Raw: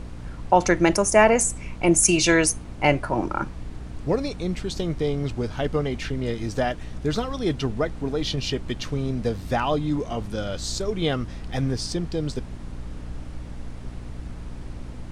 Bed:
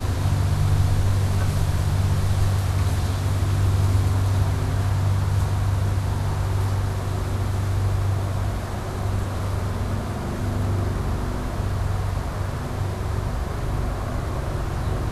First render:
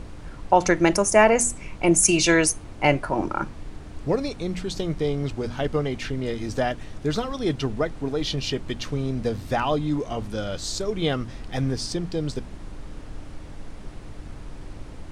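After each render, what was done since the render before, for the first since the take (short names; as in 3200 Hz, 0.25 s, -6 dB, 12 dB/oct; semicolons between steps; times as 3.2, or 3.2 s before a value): de-hum 60 Hz, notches 4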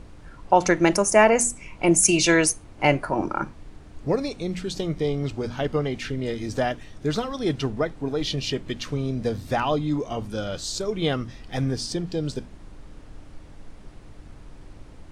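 noise print and reduce 6 dB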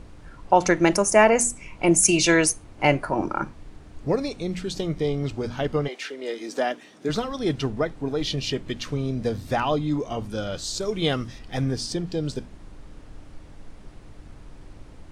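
5.87–7.08 HPF 450 Hz -> 180 Hz 24 dB/oct; 10.82–11.39 high shelf 3500 Hz +6.5 dB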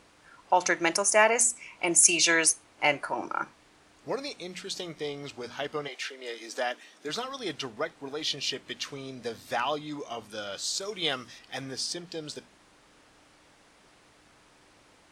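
HPF 1200 Hz 6 dB/oct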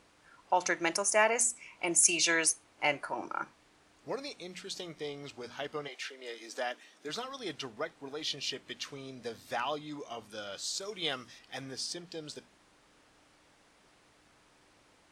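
gain -5 dB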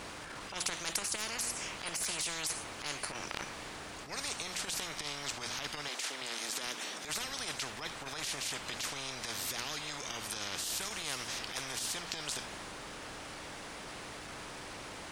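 transient shaper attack -12 dB, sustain +1 dB; spectral compressor 10:1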